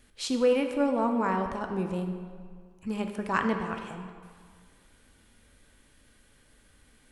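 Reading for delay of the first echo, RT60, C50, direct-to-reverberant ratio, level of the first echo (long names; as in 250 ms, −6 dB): no echo audible, 1.9 s, 6.5 dB, 4.5 dB, no echo audible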